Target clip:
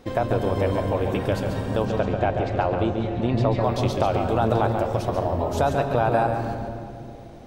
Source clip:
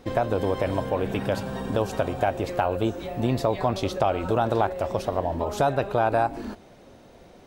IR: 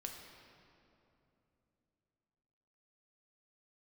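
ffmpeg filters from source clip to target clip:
-filter_complex "[0:a]asettb=1/sr,asplit=3[a][b][c];[a]atrim=end=1.854[d];[b]atrim=start=1.85:end=3.64,asetpts=PTS-STARTPTS,afade=t=in:d=0.004:c=qsin,afade=t=out:st=1.786:d=0.004:c=qsin,lowpass=4.2k[e];[c]atrim=start=3.636[f];[d][e]acrossfade=d=0.004:c1=hsin:c2=qsin[g];[g][f]acrossfade=d=0.004:c1=qsin:c2=hsin,asplit=2[h][i];[i]lowshelf=f=210:g=10.5[j];[1:a]atrim=start_sample=2205,adelay=139[k];[j][k]afir=irnorm=-1:irlink=0,volume=-2.5dB[l];[h][l]amix=inputs=2:normalize=0"

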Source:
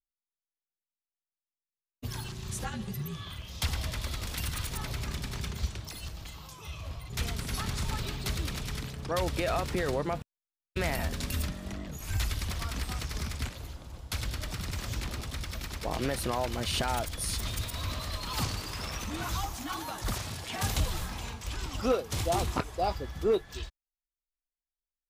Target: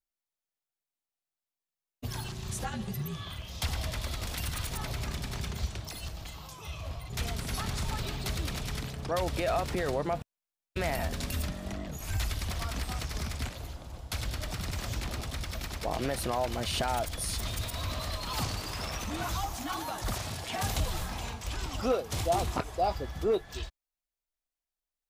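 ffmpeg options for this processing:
-filter_complex "[0:a]equalizer=f=690:w=2.6:g=5,asplit=2[a][b];[b]alimiter=level_in=2.5dB:limit=-24dB:level=0:latency=1:release=83,volume=-2.5dB,volume=-1.5dB[c];[a][c]amix=inputs=2:normalize=0,volume=-4.5dB"

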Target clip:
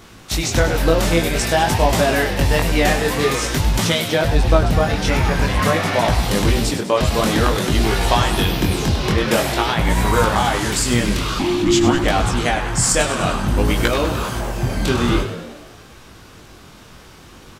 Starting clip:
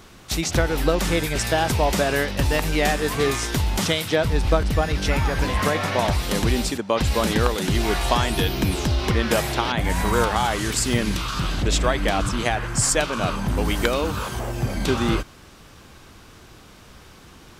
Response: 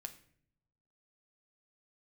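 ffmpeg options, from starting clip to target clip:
-filter_complex "[0:a]flanger=delay=17.5:depth=7:speed=0.5,asplit=8[a][b][c][d][e][f][g][h];[b]adelay=100,afreqshift=63,volume=-10.5dB[i];[c]adelay=200,afreqshift=126,volume=-15.4dB[j];[d]adelay=300,afreqshift=189,volume=-20.3dB[k];[e]adelay=400,afreqshift=252,volume=-25.1dB[l];[f]adelay=500,afreqshift=315,volume=-30dB[m];[g]adelay=600,afreqshift=378,volume=-34.9dB[n];[h]adelay=700,afreqshift=441,volume=-39.8dB[o];[a][i][j][k][l][m][n][o]amix=inputs=8:normalize=0,asettb=1/sr,asplit=3[p][q][r];[p]atrim=end=11.394[s];[q]atrim=start=11.39:end=12.04,asetpts=PTS-STARTPTS,afade=t=in:d=0.004:c=qsin,afade=t=out:st=0.646:d=0.004:c=qsin,afreqshift=-400[t];[r]atrim=start=12.036[u];[s][t]acrossfade=d=0.004:c1=hsin:c2=qsin[v];[v][u]acrossfade=d=0.004:c1=qsin:c2=hsin,volume=6.5dB"

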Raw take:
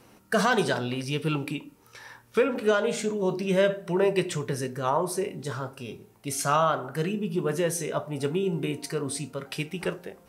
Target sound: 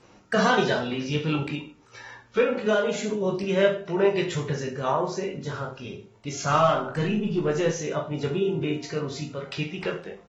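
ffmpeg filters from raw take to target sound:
-filter_complex "[0:a]asettb=1/sr,asplit=3[a][b][c];[a]atrim=end=6.494[d];[b]atrim=start=6.49:end=7.71,asetpts=PTS-STARTPTS,afade=t=in:d=0.004:c=qsin,afade=t=out:st=1.216:d=0.004:c=qsin,aeval=exprs='0.237*(cos(1*acos(clip(val(0)/0.237,-1,1)))-cos(1*PI/2))+0.00237*(cos(2*acos(clip(val(0)/0.237,-1,1)))-cos(2*PI/2))+0.00299*(cos(3*acos(clip(val(0)/0.237,-1,1)))-cos(3*PI/2))+0.0188*(cos(5*acos(clip(val(0)/0.237,-1,1)))-cos(5*PI/2))+0.00335*(cos(8*acos(clip(val(0)/0.237,-1,1)))-cos(8*PI/2))':c=same[e];[c]atrim=start=7.706[f];[d][e]acrossfade=d=0.004:c1=hsin:c2=qsin[g];[g][f]acrossfade=d=0.004:c1=qsin:c2=hsin,aecho=1:1:20|43|69.45|99.87|134.8:0.631|0.398|0.251|0.158|0.1,volume=-1.5dB" -ar 48000 -c:a aac -b:a 24k

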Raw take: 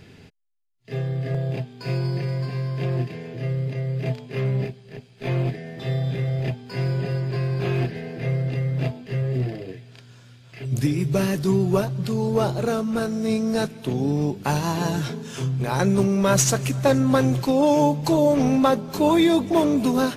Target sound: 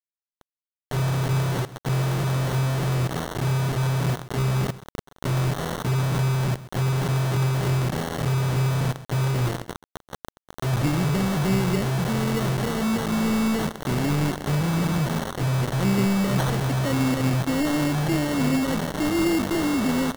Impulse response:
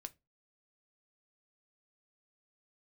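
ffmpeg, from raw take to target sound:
-filter_complex "[0:a]aeval=exprs='val(0)+0.5*0.0708*sgn(val(0))':c=same,equalizer=f=3.1k:w=0.33:g=-11,acrossover=split=450|2300[a][b][c];[b]acompressor=threshold=-39dB:ratio=6[d];[a][d][c]amix=inputs=3:normalize=0,equalizer=f=160:t=o:w=0.33:g=3,equalizer=f=1k:t=o:w=0.33:g=-10,equalizer=f=8k:t=o:w=0.33:g=7,acrusher=bits=3:mix=0:aa=0.000001,aecho=1:1:132:0.158,acrusher=samples=18:mix=1:aa=0.000001,volume=-3.5dB"

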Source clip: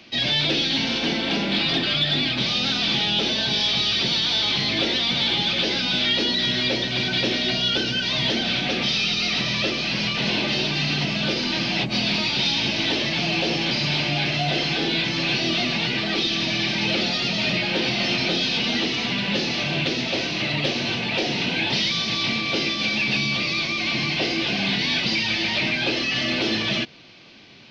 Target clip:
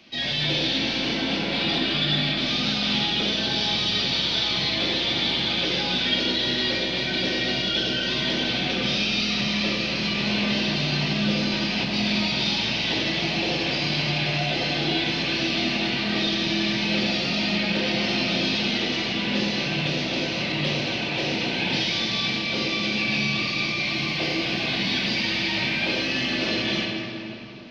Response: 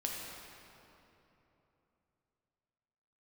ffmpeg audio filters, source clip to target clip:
-filter_complex "[0:a]asettb=1/sr,asplit=3[a][b][c];[a]atrim=end=23.854[d];[b]atrim=start=23.85:end=26.33,asetpts=PTS-STARTPTS,afade=t=in:d=0.004:c=qsin,afade=t=out:st=2.476:d=0.004:c=qsin,aeval=exprs='sgn(val(0))*max(abs(val(0))-0.00133,0)':c=same[e];[c]atrim=start=26.326[f];[d][e]acrossfade=d=0.004:c1=hsin:c2=qsin[g];[g][f]acrossfade=d=0.004:c1=qsin:c2=hsin[h];[1:a]atrim=start_sample=2205[i];[h][i]afir=irnorm=-1:irlink=0,volume=-4dB"

